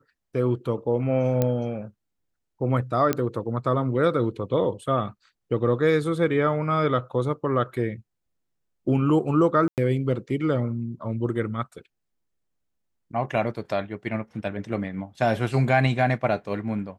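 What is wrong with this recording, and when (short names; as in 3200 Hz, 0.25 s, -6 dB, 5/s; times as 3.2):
1.42 pop -10 dBFS
3.13 pop -8 dBFS
9.68–9.78 gap 98 ms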